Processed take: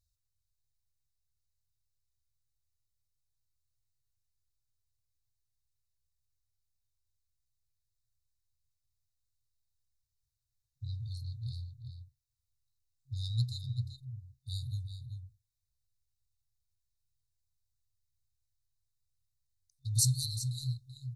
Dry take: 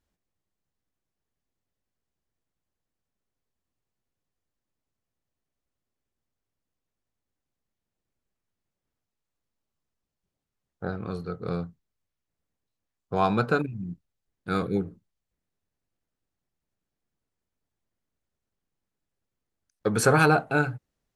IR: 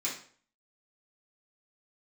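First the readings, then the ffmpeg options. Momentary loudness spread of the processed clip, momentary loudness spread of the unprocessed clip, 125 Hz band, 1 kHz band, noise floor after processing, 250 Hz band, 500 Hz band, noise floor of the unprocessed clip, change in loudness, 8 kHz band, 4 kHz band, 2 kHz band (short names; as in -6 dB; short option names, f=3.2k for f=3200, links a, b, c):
18 LU, 19 LU, -2.5 dB, under -40 dB, -84 dBFS, under -20 dB, under -40 dB, under -85 dBFS, -10.0 dB, n/a, +0.5 dB, under -40 dB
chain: -filter_complex "[0:a]asplit=2[a][b];[b]adelay=384.8,volume=-6dB,highshelf=f=4k:g=-8.66[c];[a][c]amix=inputs=2:normalize=0,afftfilt=real='re*(1-between(b*sr/4096,130,3600))':imag='im*(1-between(b*sr/4096,130,3600))':win_size=4096:overlap=0.75,acontrast=49,volume=-4.5dB"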